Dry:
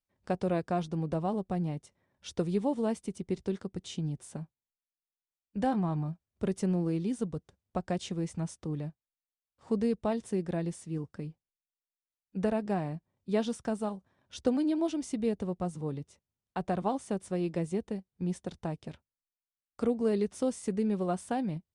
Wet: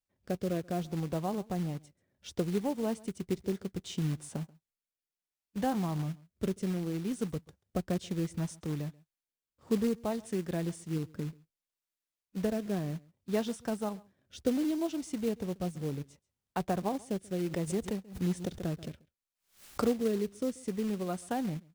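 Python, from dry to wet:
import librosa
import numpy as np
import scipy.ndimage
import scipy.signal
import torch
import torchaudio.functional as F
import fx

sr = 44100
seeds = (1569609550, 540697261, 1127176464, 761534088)

y = fx.rotary(x, sr, hz=0.65)
y = y + 10.0 ** (-24.0 / 20.0) * np.pad(y, (int(135 * sr / 1000.0), 0))[:len(y)]
y = fx.rider(y, sr, range_db=3, speed_s=0.5)
y = fx.quant_float(y, sr, bits=2)
y = fx.pre_swell(y, sr, db_per_s=140.0, at=(17.35, 19.92))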